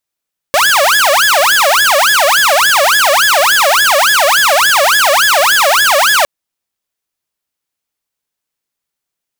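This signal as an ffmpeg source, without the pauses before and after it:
-f lavfi -i "aevalsrc='0.596*(2*mod((1131.5*t-578.5/(2*PI*3.5)*sin(2*PI*3.5*t)),1)-1)':d=5.71:s=44100"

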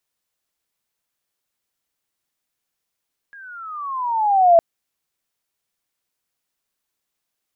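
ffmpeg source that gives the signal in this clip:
-f lavfi -i "aevalsrc='pow(10,(-7+31*(t/1.26-1))/20)*sin(2*PI*1660*1.26/(-16*log(2)/12)*(exp(-16*log(2)/12*t/1.26)-1))':d=1.26:s=44100"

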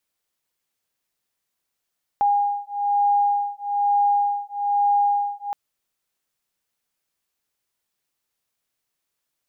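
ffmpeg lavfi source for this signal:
-f lavfi -i "aevalsrc='0.0891*(sin(2*PI*814*t)+sin(2*PI*815.1*t))':d=3.32:s=44100"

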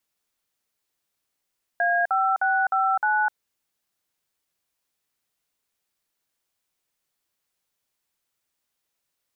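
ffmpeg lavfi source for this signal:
-f lavfi -i "aevalsrc='0.0841*clip(min(mod(t,0.307),0.255-mod(t,0.307))/0.002,0,1)*(eq(floor(t/0.307),0)*(sin(2*PI*697*mod(t,0.307))+sin(2*PI*1633*mod(t,0.307)))+eq(floor(t/0.307),1)*(sin(2*PI*770*mod(t,0.307))+sin(2*PI*1336*mod(t,0.307)))+eq(floor(t/0.307),2)*(sin(2*PI*770*mod(t,0.307))+sin(2*PI*1477*mod(t,0.307)))+eq(floor(t/0.307),3)*(sin(2*PI*770*mod(t,0.307))+sin(2*PI*1336*mod(t,0.307)))+eq(floor(t/0.307),4)*(sin(2*PI*852*mod(t,0.307))+sin(2*PI*1477*mod(t,0.307))))':d=1.535:s=44100"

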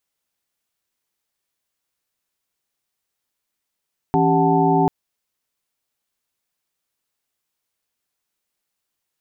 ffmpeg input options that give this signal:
-f lavfi -i "aevalsrc='0.1*(sin(2*PI*164.81*t)+sin(2*PI*277.18*t)+sin(2*PI*392*t)+sin(2*PI*739.99*t)+sin(2*PI*880*t))':d=0.74:s=44100"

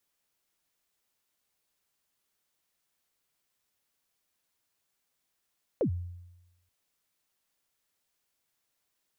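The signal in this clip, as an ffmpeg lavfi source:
-f lavfi -i "aevalsrc='0.0794*pow(10,-3*t/1)*sin(2*PI*(590*0.091/log(88/590)*(exp(log(88/590)*min(t,0.091)/0.091)-1)+88*max(t-0.091,0)))':d=0.88:s=44100"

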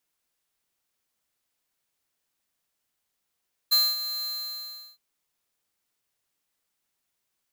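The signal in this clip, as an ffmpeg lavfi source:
-f lavfi -i "aevalsrc='0.112*(2*lt(mod(4120*t,1),0.5)-1)':d=1.265:s=44100,afade=t=in:d=0.018,afade=t=out:st=0.018:d=0.228:silence=0.237,afade=t=out:st=0.53:d=0.735"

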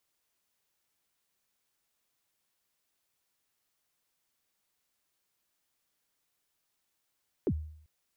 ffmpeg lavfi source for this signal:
-f lavfi -i "aevalsrc='0.0708*pow(10,-3*t/0.64)*sin(2*PI*(470*0.06/log(77/470)*(exp(log(77/470)*min(t,0.06)/0.06)-1)+77*max(t-0.06,0)))':d=0.39:s=44100"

